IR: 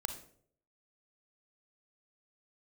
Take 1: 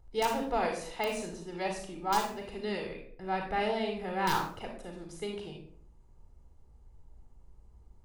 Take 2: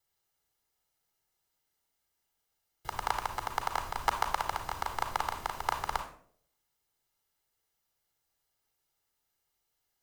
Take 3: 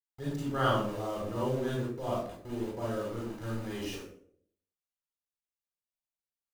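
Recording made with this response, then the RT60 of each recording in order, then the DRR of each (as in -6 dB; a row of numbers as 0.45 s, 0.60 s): 2; 0.60 s, 0.60 s, 0.60 s; 2.0 dB, 7.0 dB, -5.5 dB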